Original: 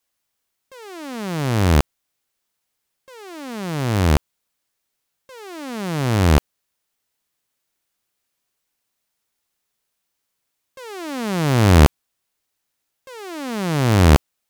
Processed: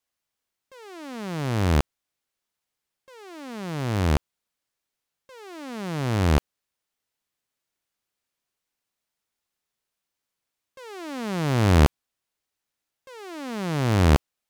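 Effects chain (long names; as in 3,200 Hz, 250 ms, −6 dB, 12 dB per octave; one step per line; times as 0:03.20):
high-shelf EQ 8,400 Hz −5.5 dB
level −5.5 dB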